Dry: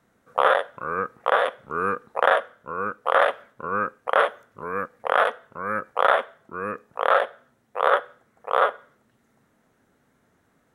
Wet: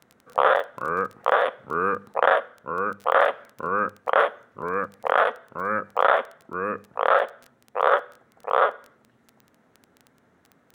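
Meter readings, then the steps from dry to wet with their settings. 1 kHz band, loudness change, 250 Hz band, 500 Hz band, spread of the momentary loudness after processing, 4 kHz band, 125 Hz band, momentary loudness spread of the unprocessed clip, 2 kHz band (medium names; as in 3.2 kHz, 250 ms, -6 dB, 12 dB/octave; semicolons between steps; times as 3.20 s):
+0.5 dB, 0.0 dB, +1.0 dB, +0.5 dB, 10 LU, -2.5 dB, +0.5 dB, 11 LU, -0.5 dB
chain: high-pass 74 Hz; treble shelf 5.2 kHz -11.5 dB; hum notches 50/100/150/200 Hz; in parallel at -2.5 dB: compression, threshold -28 dBFS, peak gain reduction 14 dB; on the sum: crackle 14 per s -31 dBFS; trim -1 dB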